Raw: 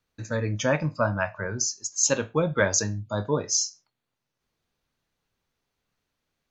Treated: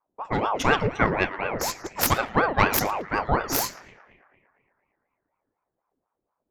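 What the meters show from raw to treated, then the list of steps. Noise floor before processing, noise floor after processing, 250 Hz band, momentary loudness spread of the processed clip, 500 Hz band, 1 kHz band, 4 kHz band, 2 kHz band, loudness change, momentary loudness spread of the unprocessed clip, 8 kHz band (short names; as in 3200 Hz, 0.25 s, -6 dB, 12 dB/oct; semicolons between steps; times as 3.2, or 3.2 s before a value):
-83 dBFS, -83 dBFS, +1.5 dB, 7 LU, -0.5 dB, +10.0 dB, +0.5 dB, +4.5 dB, +1.5 dB, 7 LU, -7.5 dB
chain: tracing distortion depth 0.26 ms; low-pass opened by the level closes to 490 Hz, open at -23 dBFS; on a send: narrowing echo 0.113 s, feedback 73%, band-pass 1300 Hz, level -11.5 dB; on the sum: ring modulator with a swept carrier 650 Hz, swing 60%, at 4.1 Hz; gain +5 dB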